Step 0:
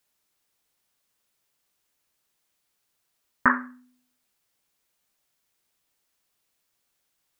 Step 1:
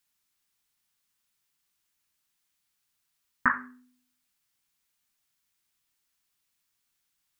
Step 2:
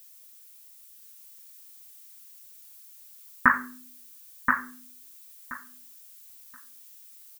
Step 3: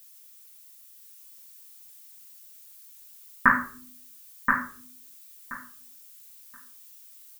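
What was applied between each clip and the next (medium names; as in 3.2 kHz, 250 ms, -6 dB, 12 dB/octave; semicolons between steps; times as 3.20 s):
peaking EQ 540 Hz -11 dB 1.2 oct; hum notches 50/100/150/200/250/300/350/400 Hz; trim -2 dB
added noise violet -57 dBFS; on a send: feedback delay 1027 ms, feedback 17%, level -4.5 dB; on the sum: trim +5 dB
simulated room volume 270 m³, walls furnished, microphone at 1.2 m; trim -1 dB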